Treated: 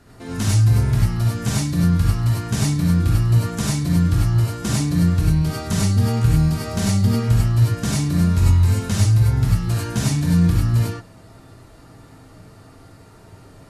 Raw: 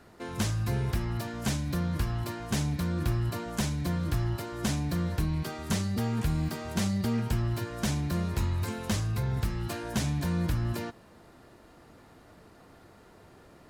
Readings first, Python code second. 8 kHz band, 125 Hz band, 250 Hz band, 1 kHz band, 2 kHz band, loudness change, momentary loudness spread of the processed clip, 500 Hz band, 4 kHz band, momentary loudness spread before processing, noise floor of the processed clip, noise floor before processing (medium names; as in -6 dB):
+10.5 dB, +14.0 dB, +10.5 dB, +6.0 dB, +6.5 dB, +12.0 dB, 5 LU, +6.0 dB, +8.0 dB, 3 LU, -46 dBFS, -55 dBFS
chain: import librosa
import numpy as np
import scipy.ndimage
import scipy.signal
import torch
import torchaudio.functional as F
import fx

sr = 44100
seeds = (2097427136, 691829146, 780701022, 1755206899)

y = fx.brickwall_lowpass(x, sr, high_hz=13000.0)
y = fx.bass_treble(y, sr, bass_db=7, treble_db=5)
y = fx.rev_gated(y, sr, seeds[0], gate_ms=120, shape='rising', drr_db=-5.0)